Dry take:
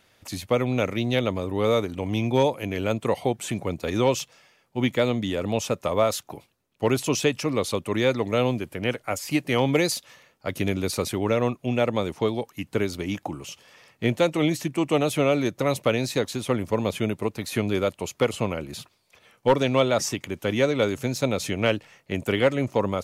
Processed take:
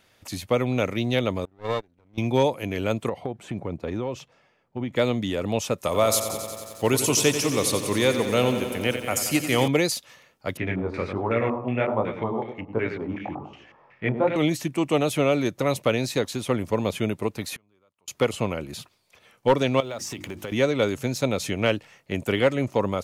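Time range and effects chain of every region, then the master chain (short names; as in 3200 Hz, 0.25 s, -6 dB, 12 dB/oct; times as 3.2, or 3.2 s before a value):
1.45–2.18 minimum comb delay 0.52 ms + gate -23 dBFS, range -30 dB + high shelf 6200 Hz -11.5 dB
3.09–4.96 LPF 1100 Hz 6 dB/oct + compressor 5:1, threshold -24 dBFS
5.78–9.68 bell 11000 Hz +11 dB 1.8 oct + lo-fi delay 90 ms, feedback 80%, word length 8-bit, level -10 dB
10.57–14.36 feedback echo 99 ms, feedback 39%, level -7.5 dB + chorus 1.3 Hz, delay 17 ms, depth 7 ms + LFO low-pass square 2.7 Hz 970–2000 Hz
17.56–18.08 bell 1100 Hz +10.5 dB 0.61 oct + compressor 1.5:1, threshold -33 dBFS + flipped gate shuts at -35 dBFS, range -36 dB
19.8–20.52 G.711 law mismatch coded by mu + notches 50/100/150/200/250/300/350 Hz + compressor 10:1, threshold -29 dBFS
whole clip: dry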